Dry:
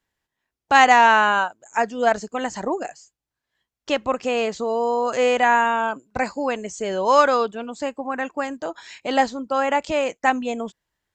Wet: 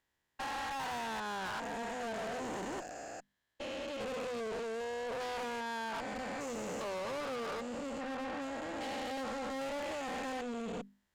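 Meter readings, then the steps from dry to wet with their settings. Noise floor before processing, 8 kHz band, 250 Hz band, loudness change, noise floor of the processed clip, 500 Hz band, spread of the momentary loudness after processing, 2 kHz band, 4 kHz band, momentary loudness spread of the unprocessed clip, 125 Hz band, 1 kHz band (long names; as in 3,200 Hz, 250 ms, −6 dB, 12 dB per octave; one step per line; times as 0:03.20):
below −85 dBFS, −12.0 dB, −13.5 dB, −18.5 dB, −83 dBFS, −16.5 dB, 4 LU, −19.5 dB, −14.0 dB, 14 LU, can't be measured, −20.5 dB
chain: spectrum averaged block by block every 400 ms
downward compressor 6 to 1, threshold −25 dBFS, peak gain reduction 10.5 dB
mains-hum notches 50/100/150/200/250 Hz
tube saturation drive 38 dB, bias 0.45
level +1 dB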